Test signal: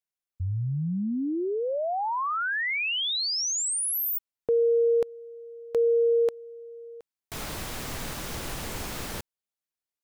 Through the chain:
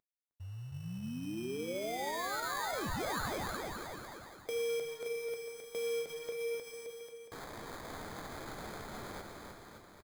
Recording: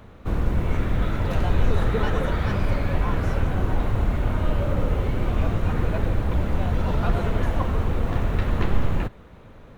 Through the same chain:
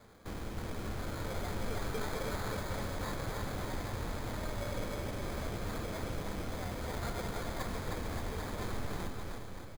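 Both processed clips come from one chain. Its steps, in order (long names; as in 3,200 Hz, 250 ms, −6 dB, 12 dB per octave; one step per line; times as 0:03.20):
variable-slope delta modulation 32 kbit/s
low-shelf EQ 180 Hz −10.5 dB
in parallel at −1 dB: downward compressor, threshold −33 dBFS
on the sum: flanger 0.24 Hz, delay 8.6 ms, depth 8.4 ms, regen −84%
sample-rate reduction 2,800 Hz, jitter 0%
flanger 1.7 Hz, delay 8.6 ms, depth 1.5 ms, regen −71%
on a send: bouncing-ball delay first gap 310 ms, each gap 0.85×, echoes 5
on the sum: level −5 dB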